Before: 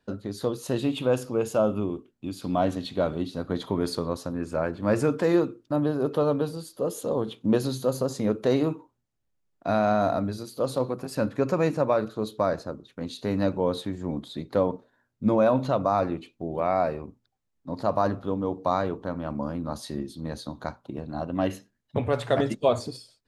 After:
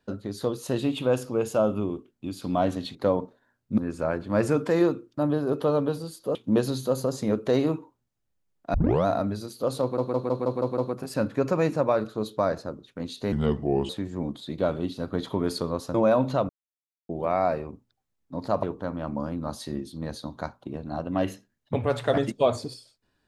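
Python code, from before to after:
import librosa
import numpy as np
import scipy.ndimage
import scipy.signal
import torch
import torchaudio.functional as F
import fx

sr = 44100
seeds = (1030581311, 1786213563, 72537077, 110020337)

y = fx.edit(x, sr, fx.swap(start_s=2.95, length_s=1.36, other_s=14.46, other_length_s=0.83),
    fx.cut(start_s=6.88, length_s=0.44),
    fx.tape_start(start_s=9.71, length_s=0.32),
    fx.stutter(start_s=10.79, slice_s=0.16, count=7),
    fx.speed_span(start_s=13.33, length_s=0.44, speed=0.77),
    fx.silence(start_s=15.84, length_s=0.6),
    fx.cut(start_s=17.98, length_s=0.88), tone=tone)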